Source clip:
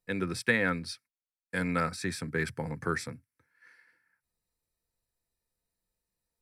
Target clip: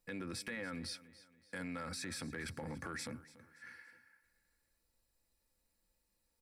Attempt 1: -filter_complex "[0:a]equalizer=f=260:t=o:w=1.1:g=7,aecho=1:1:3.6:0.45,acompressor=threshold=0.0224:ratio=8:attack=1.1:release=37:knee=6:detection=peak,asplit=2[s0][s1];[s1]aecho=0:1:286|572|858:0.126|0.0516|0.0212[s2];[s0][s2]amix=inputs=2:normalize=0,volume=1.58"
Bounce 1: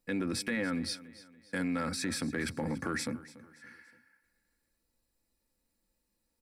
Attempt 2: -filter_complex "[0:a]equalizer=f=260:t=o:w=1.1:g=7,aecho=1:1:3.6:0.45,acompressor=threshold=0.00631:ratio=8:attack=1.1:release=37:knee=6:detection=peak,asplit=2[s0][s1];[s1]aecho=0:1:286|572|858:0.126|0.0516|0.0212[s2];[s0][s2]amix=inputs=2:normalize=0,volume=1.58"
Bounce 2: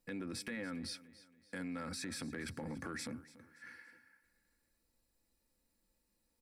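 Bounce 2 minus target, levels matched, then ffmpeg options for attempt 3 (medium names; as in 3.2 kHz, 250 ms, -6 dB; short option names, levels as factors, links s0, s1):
250 Hz band +2.0 dB
-filter_complex "[0:a]aecho=1:1:3.6:0.45,acompressor=threshold=0.00631:ratio=8:attack=1.1:release=37:knee=6:detection=peak,asplit=2[s0][s1];[s1]aecho=0:1:286|572|858:0.126|0.0516|0.0212[s2];[s0][s2]amix=inputs=2:normalize=0,volume=1.58"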